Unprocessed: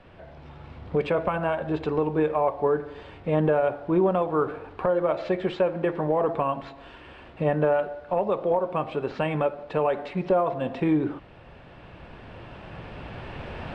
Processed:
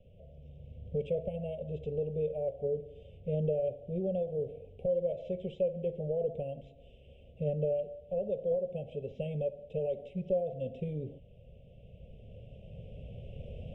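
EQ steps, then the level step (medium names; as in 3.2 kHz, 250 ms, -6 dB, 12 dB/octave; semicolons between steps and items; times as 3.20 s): elliptic band-stop 530–3100 Hz, stop band 50 dB; treble shelf 2.7 kHz -10.5 dB; static phaser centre 1.2 kHz, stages 6; -2.5 dB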